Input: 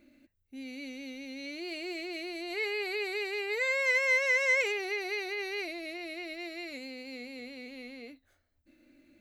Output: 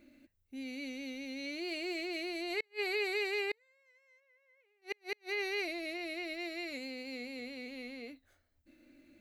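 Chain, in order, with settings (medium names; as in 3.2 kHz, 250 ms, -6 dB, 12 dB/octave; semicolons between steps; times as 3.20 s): inverted gate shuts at -25 dBFS, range -41 dB; 4.20–4.82 s: distance through air 250 m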